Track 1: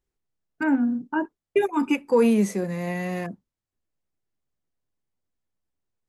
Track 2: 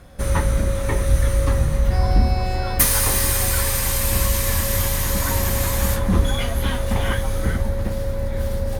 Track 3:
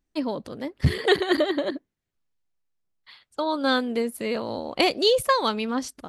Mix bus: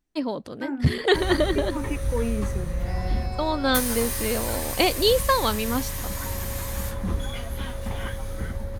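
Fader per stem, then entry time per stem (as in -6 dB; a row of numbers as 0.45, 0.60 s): -9.5, -9.5, 0.0 dB; 0.00, 0.95, 0.00 s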